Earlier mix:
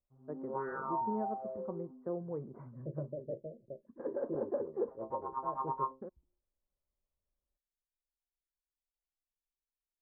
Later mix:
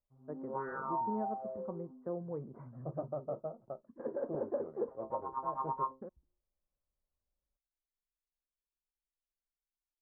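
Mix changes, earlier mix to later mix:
second voice: remove steep low-pass 590 Hz 72 dB/oct; master: add bell 380 Hz -3.5 dB 0.35 oct

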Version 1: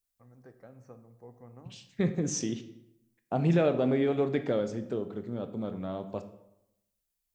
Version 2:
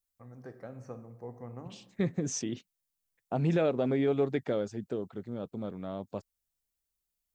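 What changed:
first voice +7.0 dB; second voice: send off

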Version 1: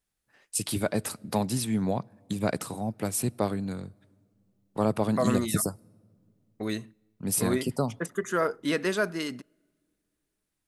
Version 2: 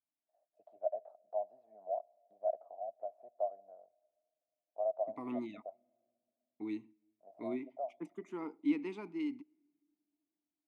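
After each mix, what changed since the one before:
first voice: add Butterworth band-pass 660 Hz, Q 6.1; second voice: add vowel filter u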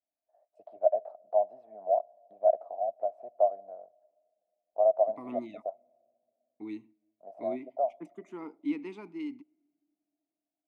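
first voice +11.0 dB

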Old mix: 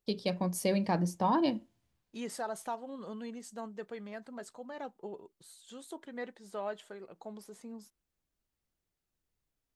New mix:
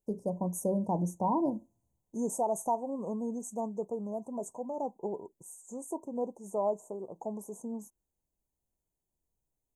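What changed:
second voice +8.0 dB; master: add Chebyshev band-stop 1000–6300 Hz, order 5

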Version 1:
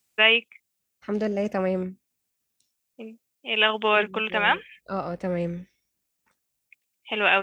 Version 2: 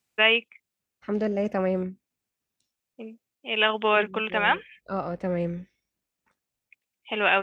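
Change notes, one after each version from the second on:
master: add high shelf 4500 Hz -9.5 dB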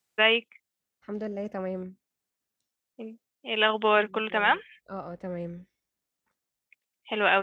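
second voice -7.5 dB; master: add bell 2500 Hz -4.5 dB 0.33 oct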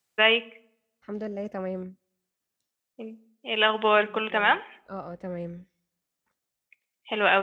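reverb: on, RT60 0.70 s

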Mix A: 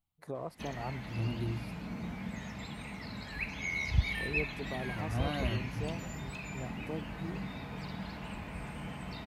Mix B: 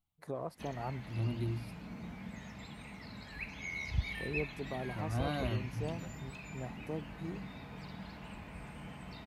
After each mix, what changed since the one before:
background -5.5 dB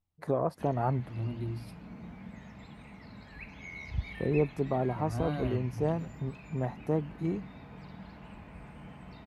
first voice +11.0 dB; master: add high shelf 2800 Hz -10 dB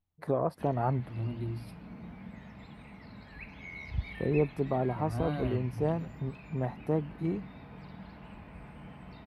master: add bell 6700 Hz -9.5 dB 0.41 oct

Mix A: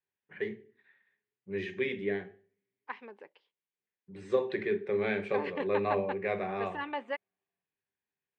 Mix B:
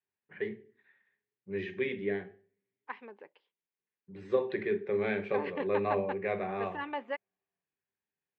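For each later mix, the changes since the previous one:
master: add air absorption 140 m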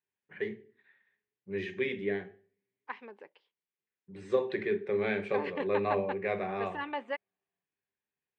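master: remove air absorption 140 m

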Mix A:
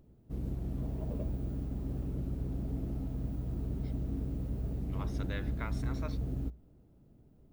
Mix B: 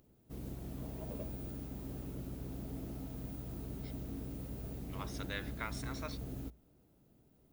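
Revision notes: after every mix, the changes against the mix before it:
master: add tilt +2.5 dB/oct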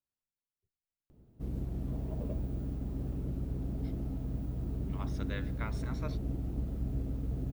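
background: entry +1.10 s; master: add tilt -2.5 dB/oct

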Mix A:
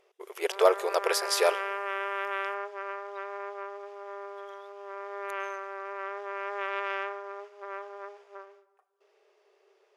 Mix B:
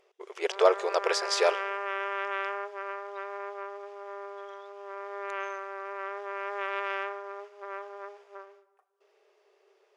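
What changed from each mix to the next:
speech: add LPF 7300 Hz 24 dB/oct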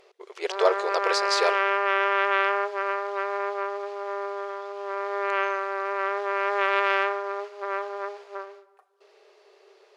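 background +9.5 dB; master: add bell 4200 Hz +8.5 dB 0.27 oct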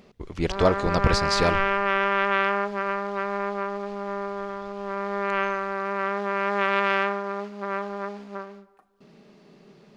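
master: remove brick-wall FIR band-pass 360–13000 Hz

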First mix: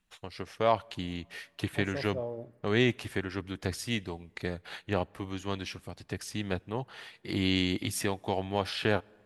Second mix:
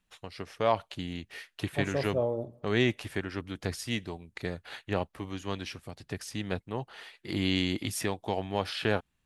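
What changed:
first voice: send off; second voice +7.0 dB

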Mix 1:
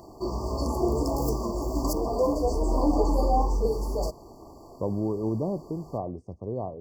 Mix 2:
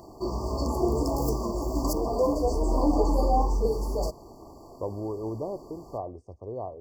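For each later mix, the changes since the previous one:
first voice: muted; second voice: add bell 180 Hz -14 dB 1.2 oct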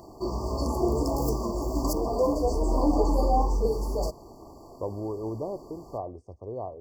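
first voice: unmuted

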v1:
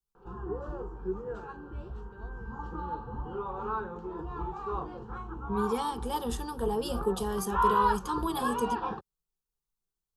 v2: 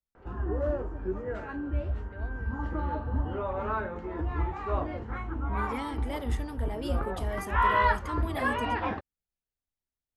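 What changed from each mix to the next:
second voice -9.5 dB; master: remove fixed phaser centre 410 Hz, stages 8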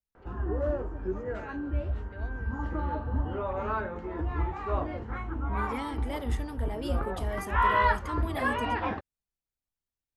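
first voice: add high shelf 4600 Hz +11.5 dB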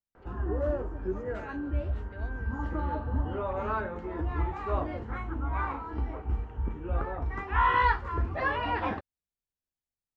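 second voice: muted

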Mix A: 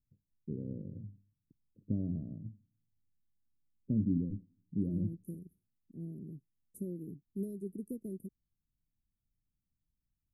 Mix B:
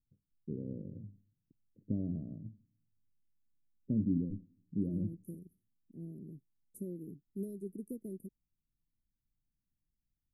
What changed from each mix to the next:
first voice: send +6.0 dB; master: add bell 85 Hz -4.5 dB 2.5 oct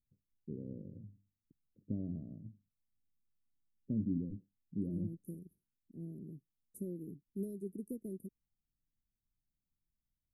reverb: off

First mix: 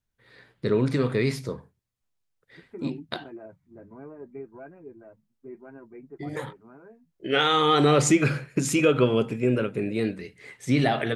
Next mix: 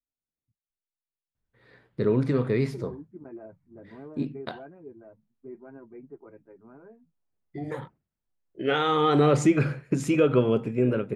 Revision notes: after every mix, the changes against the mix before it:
first voice: entry +1.35 s; master: add high shelf 2200 Hz -11.5 dB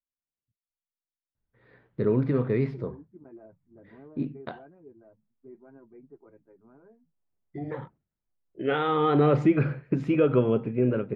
second voice -5.0 dB; master: add air absorption 340 m

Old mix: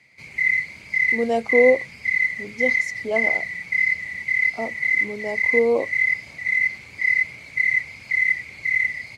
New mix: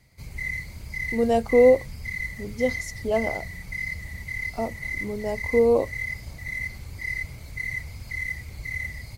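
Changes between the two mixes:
background: add bell 2300 Hz -14.5 dB 0.75 oct; master: remove BPF 200–7800 Hz

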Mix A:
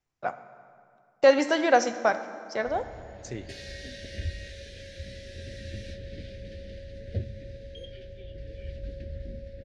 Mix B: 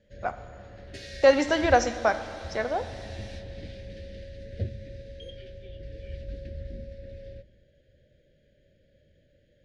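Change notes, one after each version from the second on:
second voice: muted; background: entry -2.55 s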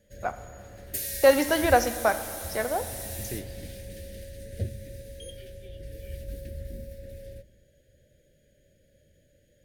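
second voice: unmuted; background: remove LPF 4700 Hz 24 dB/oct

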